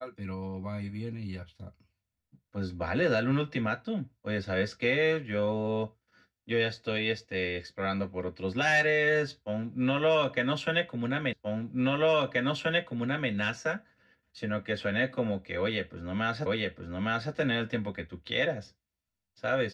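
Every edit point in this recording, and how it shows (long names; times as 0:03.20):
0:11.33: the same again, the last 1.98 s
0:16.46: the same again, the last 0.86 s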